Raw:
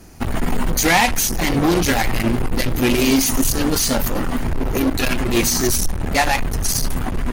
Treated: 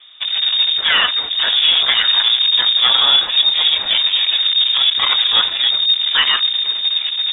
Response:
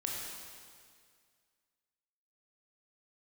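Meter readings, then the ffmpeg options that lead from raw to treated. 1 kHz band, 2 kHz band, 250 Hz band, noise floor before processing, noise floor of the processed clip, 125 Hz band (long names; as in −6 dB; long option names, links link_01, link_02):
−3.5 dB, +2.0 dB, below −25 dB, −23 dBFS, −25 dBFS, below −25 dB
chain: -af "dynaudnorm=framelen=530:gausssize=5:maxgain=4dB,lowpass=frequency=3100:width_type=q:width=0.5098,lowpass=frequency=3100:width_type=q:width=0.6013,lowpass=frequency=3100:width_type=q:width=0.9,lowpass=frequency=3100:width_type=q:width=2.563,afreqshift=-3700"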